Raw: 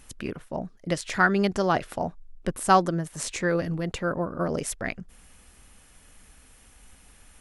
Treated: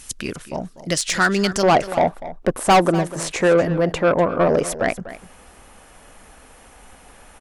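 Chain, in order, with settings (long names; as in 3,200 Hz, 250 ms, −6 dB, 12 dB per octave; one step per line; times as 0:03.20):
parametric band 6,900 Hz +12.5 dB 2.5 octaves, from 0:01.63 700 Hz
soft clipping −13.5 dBFS, distortion −6 dB
single-tap delay 245 ms −15 dB
level +4 dB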